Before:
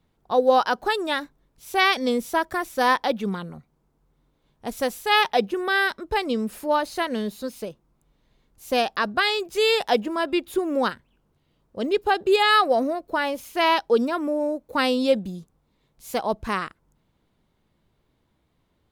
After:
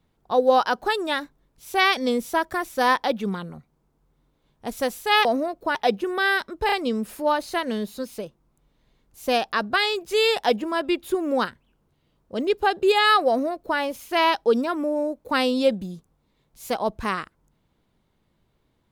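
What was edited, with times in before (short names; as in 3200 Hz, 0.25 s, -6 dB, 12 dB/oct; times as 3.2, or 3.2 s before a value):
6.16 stutter 0.03 s, 3 plays
12.72–13.22 copy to 5.25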